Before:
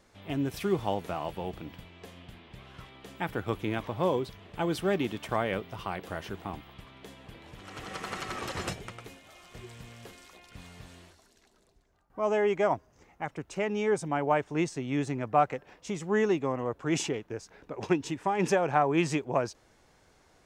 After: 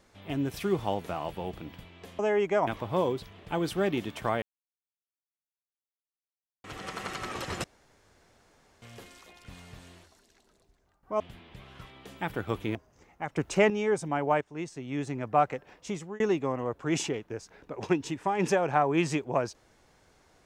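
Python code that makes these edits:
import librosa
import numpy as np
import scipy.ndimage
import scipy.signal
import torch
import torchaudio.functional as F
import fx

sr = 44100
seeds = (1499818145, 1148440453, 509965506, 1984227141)

y = fx.edit(x, sr, fx.swap(start_s=2.19, length_s=1.55, other_s=12.27, other_length_s=0.48),
    fx.silence(start_s=5.49, length_s=2.22),
    fx.room_tone_fill(start_s=8.71, length_s=1.18),
    fx.clip_gain(start_s=13.36, length_s=0.34, db=8.5),
    fx.fade_in_from(start_s=14.41, length_s=0.94, floor_db=-12.0),
    fx.fade_out_span(start_s=15.94, length_s=0.26), tone=tone)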